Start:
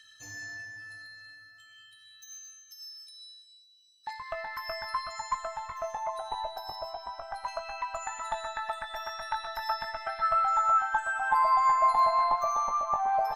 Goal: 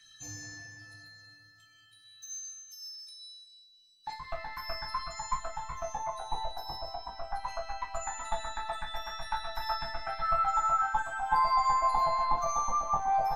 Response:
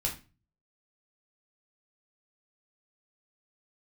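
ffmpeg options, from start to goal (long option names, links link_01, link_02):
-filter_complex "[1:a]atrim=start_sample=2205,afade=type=out:start_time=0.17:duration=0.01,atrim=end_sample=7938,asetrate=70560,aresample=44100[link_01];[0:a][link_01]afir=irnorm=-1:irlink=0"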